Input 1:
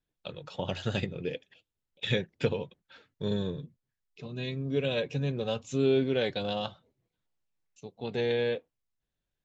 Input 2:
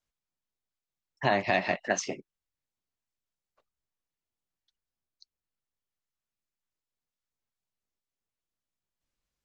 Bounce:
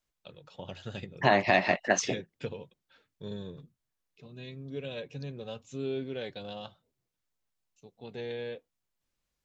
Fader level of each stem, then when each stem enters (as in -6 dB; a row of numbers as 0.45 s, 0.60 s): -9.0 dB, +2.5 dB; 0.00 s, 0.00 s